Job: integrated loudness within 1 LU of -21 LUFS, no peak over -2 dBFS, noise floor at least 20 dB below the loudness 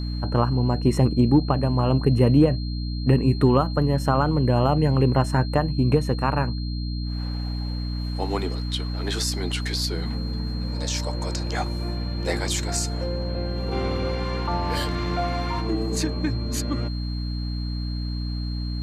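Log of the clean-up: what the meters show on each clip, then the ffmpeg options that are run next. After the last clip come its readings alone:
hum 60 Hz; harmonics up to 300 Hz; hum level -25 dBFS; steady tone 4200 Hz; tone level -39 dBFS; loudness -24.0 LUFS; peak -7.0 dBFS; loudness target -21.0 LUFS
-> -af "bandreject=f=60:t=h:w=6,bandreject=f=120:t=h:w=6,bandreject=f=180:t=h:w=6,bandreject=f=240:t=h:w=6,bandreject=f=300:t=h:w=6"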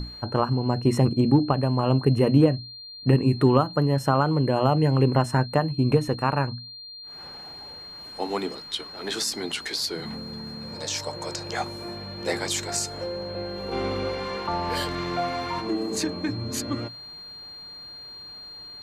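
hum none; steady tone 4200 Hz; tone level -39 dBFS
-> -af "bandreject=f=4.2k:w=30"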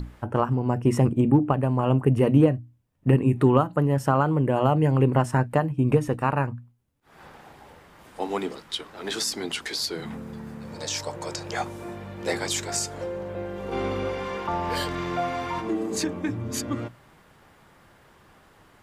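steady tone none; loudness -25.0 LUFS; peak -6.5 dBFS; loudness target -21.0 LUFS
-> -af "volume=4dB"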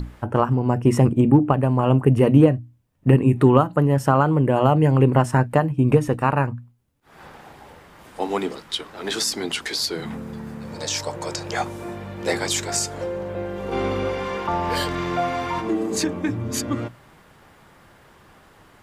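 loudness -21.0 LUFS; peak -2.5 dBFS; noise floor -52 dBFS

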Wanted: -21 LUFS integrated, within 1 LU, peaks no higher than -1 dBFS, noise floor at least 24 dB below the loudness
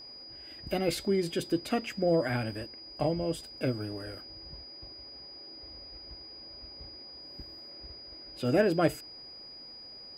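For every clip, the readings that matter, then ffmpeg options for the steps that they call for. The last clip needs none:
steady tone 4900 Hz; tone level -45 dBFS; loudness -31.0 LUFS; peak -12.0 dBFS; loudness target -21.0 LUFS
-> -af "bandreject=f=4.9k:w=30"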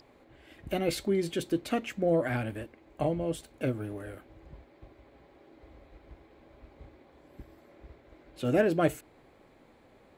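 steady tone none; loudness -30.5 LUFS; peak -12.0 dBFS; loudness target -21.0 LUFS
-> -af "volume=9.5dB"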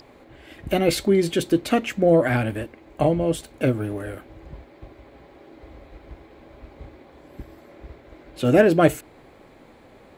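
loudness -21.0 LUFS; peak -2.5 dBFS; noise floor -51 dBFS

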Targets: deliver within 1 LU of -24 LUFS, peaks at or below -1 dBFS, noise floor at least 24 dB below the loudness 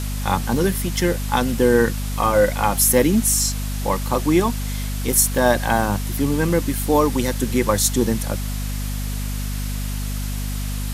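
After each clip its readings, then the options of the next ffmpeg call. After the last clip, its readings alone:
hum 50 Hz; harmonics up to 250 Hz; hum level -23 dBFS; noise floor -25 dBFS; noise floor target -44 dBFS; loudness -20.0 LUFS; peak -2.5 dBFS; loudness target -24.0 LUFS
-> -af "bandreject=f=50:t=h:w=6,bandreject=f=100:t=h:w=6,bandreject=f=150:t=h:w=6,bandreject=f=200:t=h:w=6,bandreject=f=250:t=h:w=6"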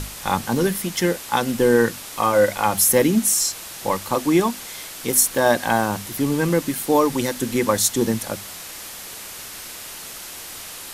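hum none; noise floor -36 dBFS; noise floor target -44 dBFS
-> -af "afftdn=nr=8:nf=-36"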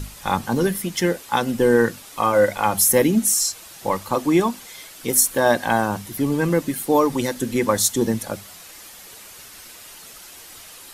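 noise floor -42 dBFS; noise floor target -44 dBFS
-> -af "afftdn=nr=6:nf=-42"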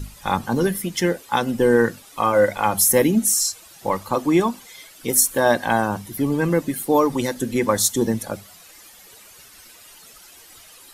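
noise floor -47 dBFS; loudness -20.0 LUFS; peak -3.0 dBFS; loudness target -24.0 LUFS
-> -af "volume=-4dB"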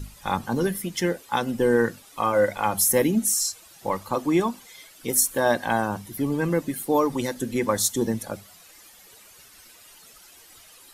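loudness -24.0 LUFS; peak -7.0 dBFS; noise floor -51 dBFS

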